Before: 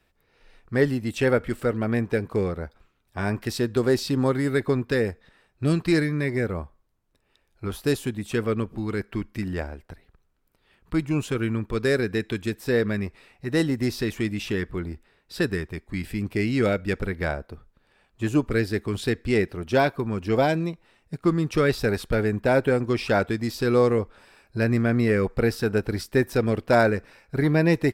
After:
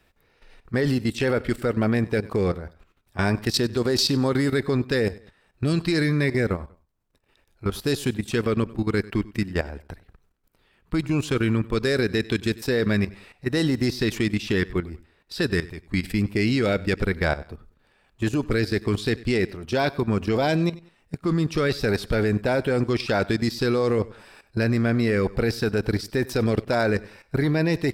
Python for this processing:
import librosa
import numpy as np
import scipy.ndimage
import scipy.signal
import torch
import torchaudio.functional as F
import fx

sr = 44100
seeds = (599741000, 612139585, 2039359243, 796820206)

y = fx.dynamic_eq(x, sr, hz=4500.0, q=1.3, threshold_db=-49.0, ratio=4.0, max_db=7)
y = fx.level_steps(y, sr, step_db=14)
y = fx.echo_feedback(y, sr, ms=96, feedback_pct=32, wet_db=-20.5)
y = y * 10.0 ** (7.0 / 20.0)